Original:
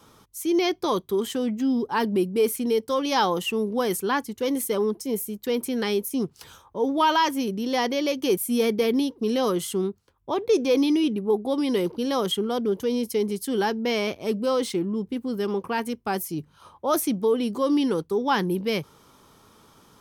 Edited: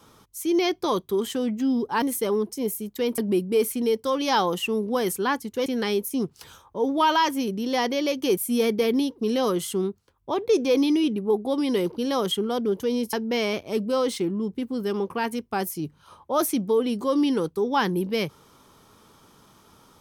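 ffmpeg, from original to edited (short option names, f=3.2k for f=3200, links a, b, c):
-filter_complex "[0:a]asplit=5[a][b][c][d][e];[a]atrim=end=2.022[f];[b]atrim=start=4.498:end=5.662[g];[c]atrim=start=2.018:end=4.502[h];[d]atrim=start=5.658:end=13.132[i];[e]atrim=start=13.668[j];[f][g]acrossfade=d=0.004:c1=hsin:c2=hsin[k];[k][h]acrossfade=d=0.004:c1=hsin:c2=hsin[l];[l][i]acrossfade=d=0.004:c1=hsin:c2=hsin[m];[m][j]acrossfade=d=0.004:c1=hsin:c2=hsin"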